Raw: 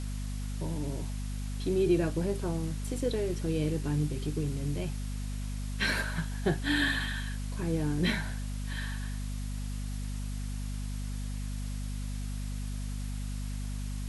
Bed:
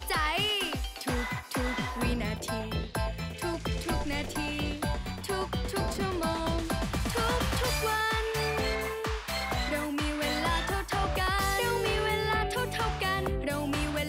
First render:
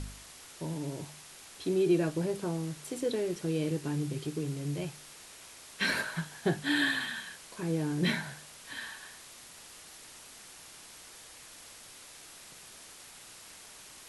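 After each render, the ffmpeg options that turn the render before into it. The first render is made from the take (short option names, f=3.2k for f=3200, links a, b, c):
-af "bandreject=f=50:t=h:w=4,bandreject=f=100:t=h:w=4,bandreject=f=150:t=h:w=4,bandreject=f=200:t=h:w=4,bandreject=f=250:t=h:w=4"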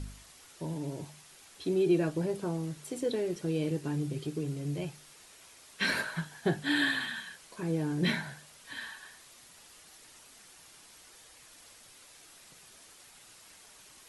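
-af "afftdn=nr=6:nf=-51"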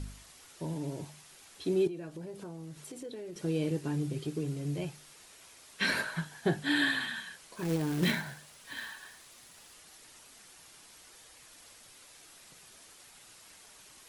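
-filter_complex "[0:a]asettb=1/sr,asplit=3[a][b][c];[a]atrim=end=1.874[d];[b]atrim=start=1.87:end=3.36,asetpts=PTS-STARTPTS,afade=t=in:d=0.004:c=qsin,afade=t=out:st=1.486:d=0.004:c=qsin,acompressor=threshold=-43dB:ratio=3:attack=3.2:release=140:knee=1:detection=peak[e];[c]atrim=start=3.356[f];[d][e]acrossfade=d=0.004:c1=hsin:c2=qsin[g];[g][f]acrossfade=d=0.004:c1=qsin:c2=hsin,asettb=1/sr,asplit=3[h][i][j];[h]atrim=end=7.554[k];[i]atrim=start=7.55:end=9.74,asetpts=PTS-STARTPTS,afade=t=in:d=0.004:c=qsin,afade=t=out:st=2.186:d=0.004:c=qsin,acrusher=bits=3:mode=log:mix=0:aa=0.000001[l];[j]atrim=start=9.736[m];[k][l]acrossfade=d=0.004:c1=hsin:c2=qsin[n];[n][m]acrossfade=d=0.004:c1=qsin:c2=hsin"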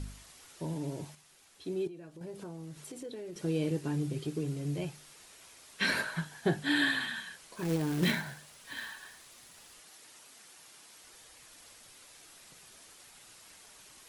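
-filter_complex "[0:a]asettb=1/sr,asplit=3[a][b][c];[a]atrim=end=9.814[d];[b]atrim=start=9.81:end=11.04,asetpts=PTS-STARTPTS,afade=t=in:d=0.004:c=qsin,afade=t=out:st=1.226:d=0.004:c=qsin,highpass=f=200:p=1[e];[c]atrim=start=11.036[f];[d][e]acrossfade=d=0.004:c1=hsin:c2=qsin[g];[g][f]acrossfade=d=0.004:c1=qsin:c2=hsin,asplit=3[h][i][j];[h]atrim=end=1.152[k];[i]atrim=start=1.148:end=2.212,asetpts=PTS-STARTPTS,volume=-6.5dB[l];[j]atrim=start=2.208[m];[k][l]acrossfade=d=0.004:c1=hsin:c2=hsin[n];[n][m]acrossfade=d=0.004:c1=hsin:c2=hsin"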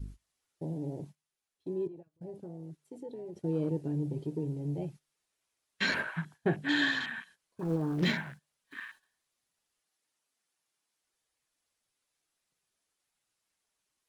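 -af "agate=range=-12dB:threshold=-46dB:ratio=16:detection=peak,afwtdn=0.00891"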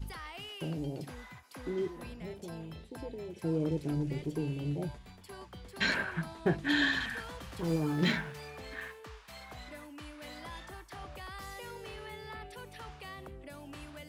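-filter_complex "[1:a]volume=-16.5dB[a];[0:a][a]amix=inputs=2:normalize=0"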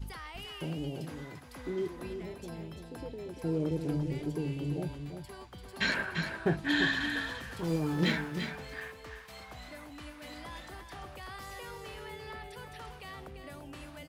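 -af "aecho=1:1:343:0.422"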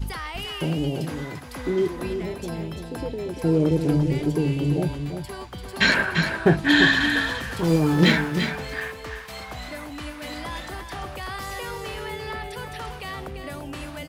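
-af "volume=11.5dB"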